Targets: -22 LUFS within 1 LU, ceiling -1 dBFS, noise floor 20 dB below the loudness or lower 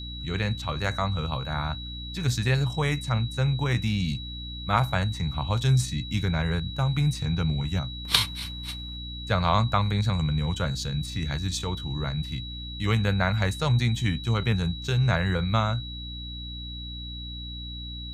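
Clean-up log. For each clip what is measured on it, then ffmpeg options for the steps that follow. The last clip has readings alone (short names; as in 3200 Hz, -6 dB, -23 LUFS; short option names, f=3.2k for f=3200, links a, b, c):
hum 60 Hz; harmonics up to 300 Hz; hum level -36 dBFS; steady tone 3900 Hz; tone level -38 dBFS; loudness -27.5 LUFS; peak -6.5 dBFS; loudness target -22.0 LUFS
-> -af "bandreject=f=60:t=h:w=4,bandreject=f=120:t=h:w=4,bandreject=f=180:t=h:w=4,bandreject=f=240:t=h:w=4,bandreject=f=300:t=h:w=4"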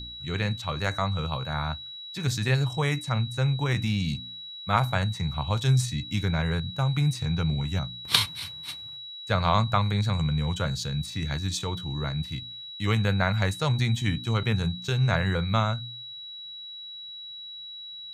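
hum none; steady tone 3900 Hz; tone level -38 dBFS
-> -af "bandreject=f=3.9k:w=30"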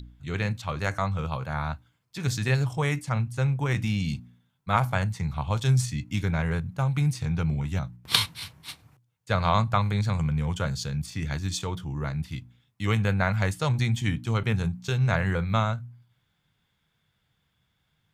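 steady tone none; loudness -27.5 LUFS; peak -5.5 dBFS; loudness target -22.0 LUFS
-> -af "volume=5.5dB,alimiter=limit=-1dB:level=0:latency=1"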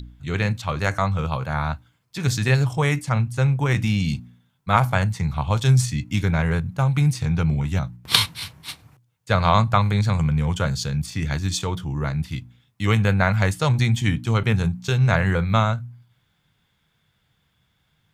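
loudness -22.0 LUFS; peak -1.0 dBFS; noise floor -68 dBFS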